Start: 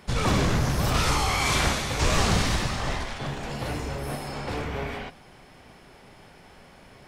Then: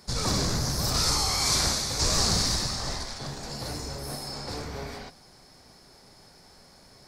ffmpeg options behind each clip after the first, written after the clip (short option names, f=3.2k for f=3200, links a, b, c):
-af "highshelf=f=3.7k:t=q:w=3:g=7.5,volume=-5dB"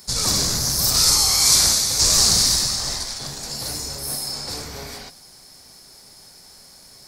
-af "crystalizer=i=3.5:c=0"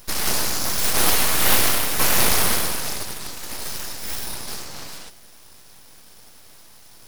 -af "aeval=exprs='abs(val(0))':c=same,volume=1dB"